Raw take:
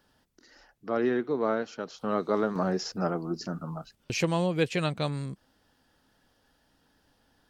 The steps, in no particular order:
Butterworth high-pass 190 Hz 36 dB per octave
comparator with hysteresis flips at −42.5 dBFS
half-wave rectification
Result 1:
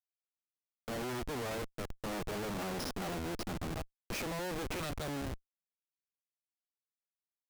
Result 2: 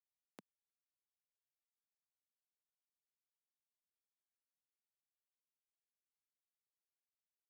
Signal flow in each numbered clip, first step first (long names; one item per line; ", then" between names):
half-wave rectification, then Butterworth high-pass, then comparator with hysteresis
half-wave rectification, then comparator with hysteresis, then Butterworth high-pass